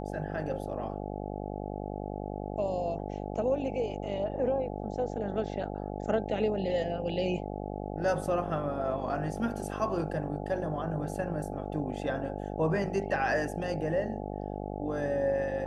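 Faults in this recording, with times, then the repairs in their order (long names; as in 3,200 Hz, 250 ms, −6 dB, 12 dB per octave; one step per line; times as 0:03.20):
mains buzz 50 Hz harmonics 17 −37 dBFS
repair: hum removal 50 Hz, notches 17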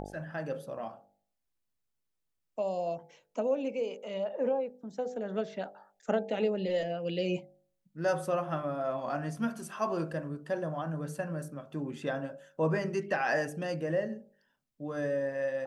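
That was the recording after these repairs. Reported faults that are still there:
none of them is left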